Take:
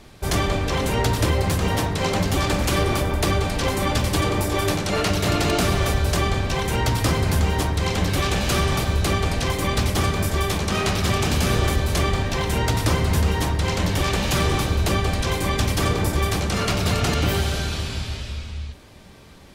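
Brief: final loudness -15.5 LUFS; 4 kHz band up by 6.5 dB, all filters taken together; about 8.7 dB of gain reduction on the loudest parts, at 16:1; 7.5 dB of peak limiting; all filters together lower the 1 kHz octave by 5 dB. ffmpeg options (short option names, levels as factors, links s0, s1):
-af "equalizer=f=1000:t=o:g=-7,equalizer=f=4000:t=o:g=8.5,acompressor=threshold=0.0631:ratio=16,volume=5.31,alimiter=limit=0.501:level=0:latency=1"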